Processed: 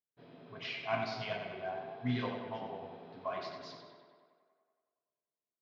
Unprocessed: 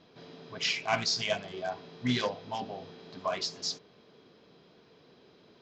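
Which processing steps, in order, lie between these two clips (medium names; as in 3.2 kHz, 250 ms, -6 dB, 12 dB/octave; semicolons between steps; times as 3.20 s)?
gate -51 dBFS, range -42 dB; distance through air 340 m; tape echo 95 ms, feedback 74%, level -5 dB, low-pass 4.4 kHz; reverberation, pre-delay 3 ms, DRR 4.5 dB; trim -6 dB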